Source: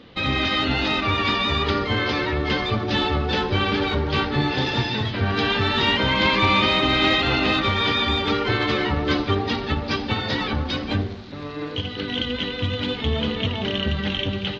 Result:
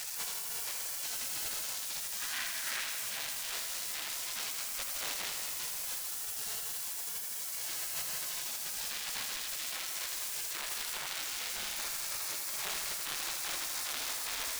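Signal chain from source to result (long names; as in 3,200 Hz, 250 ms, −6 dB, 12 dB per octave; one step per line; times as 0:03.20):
sign of each sample alone
gate on every frequency bin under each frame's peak −20 dB weak
0:02.20–0:02.84: parametric band 1,700 Hz +9.5 dB 0.98 octaves
feedback echo at a low word length 81 ms, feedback 80%, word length 8 bits, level −6.5 dB
level −8 dB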